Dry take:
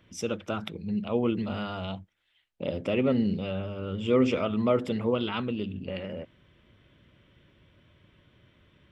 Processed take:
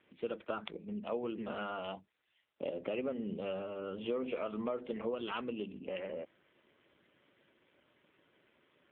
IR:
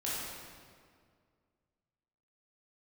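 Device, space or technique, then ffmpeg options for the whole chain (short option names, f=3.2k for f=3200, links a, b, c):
voicemail: -filter_complex "[0:a]asplit=3[a][b][c];[a]afade=t=out:st=3.5:d=0.02[d];[b]bandreject=f=60:t=h:w=6,bandreject=f=120:t=h:w=6,afade=t=in:st=3.5:d=0.02,afade=t=out:st=4.47:d=0.02[e];[c]afade=t=in:st=4.47:d=0.02[f];[d][e][f]amix=inputs=3:normalize=0,highpass=340,lowpass=3.1k,acompressor=threshold=-31dB:ratio=10,volume=-1dB" -ar 8000 -c:a libopencore_amrnb -b:a 7400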